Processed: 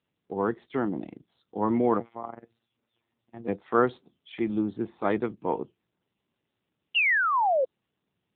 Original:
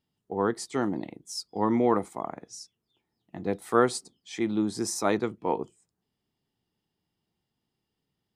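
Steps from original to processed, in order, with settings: 2.00–3.48 s: robot voice 116 Hz; 6.94–7.65 s: painted sound fall 500–3000 Hz -21 dBFS; AMR-NB 7.4 kbps 8 kHz

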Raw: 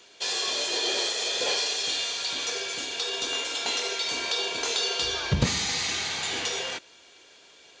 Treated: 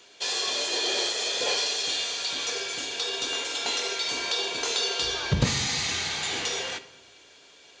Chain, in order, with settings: simulated room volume 460 m³, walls mixed, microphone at 0.32 m

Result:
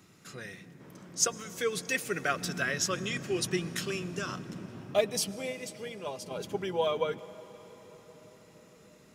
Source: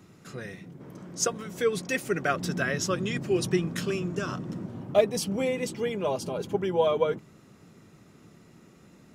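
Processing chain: tilt shelf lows -4.5 dB, about 1.3 kHz; 5.31–6.31 s: gate -28 dBFS, range -6 dB; on a send: reverberation RT60 6.3 s, pre-delay 95 ms, DRR 16.5 dB; on the sum: trim -2.5 dB

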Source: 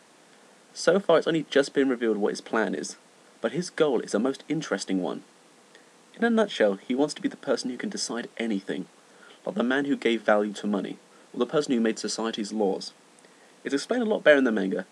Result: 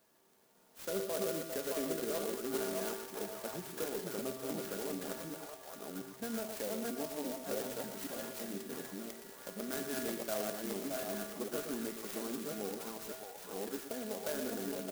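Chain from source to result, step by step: chunks repeated in reverse 547 ms, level -1 dB; echo from a far wall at 20 m, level -9 dB; peak limiter -13 dBFS, peak gain reduction 8.5 dB; feedback comb 130 Hz, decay 1.2 s, harmonics odd, mix 90%; on a send: repeats whose band climbs or falls 619 ms, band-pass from 840 Hz, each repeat 0.7 oct, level -1 dB; on the sum: sampling jitter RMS 0.12 ms; trim +2.5 dB

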